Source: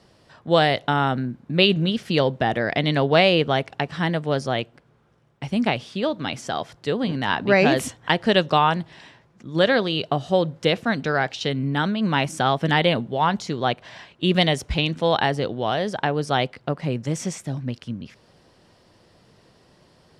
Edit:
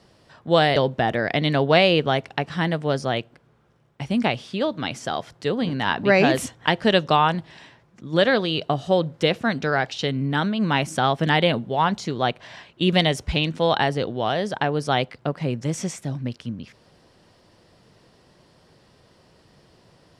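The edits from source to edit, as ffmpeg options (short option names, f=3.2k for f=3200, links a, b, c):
-filter_complex "[0:a]asplit=2[a][b];[a]atrim=end=0.762[c];[b]atrim=start=2.178[d];[c][d]acrossfade=d=0.004:c1=hsin:c2=hsin"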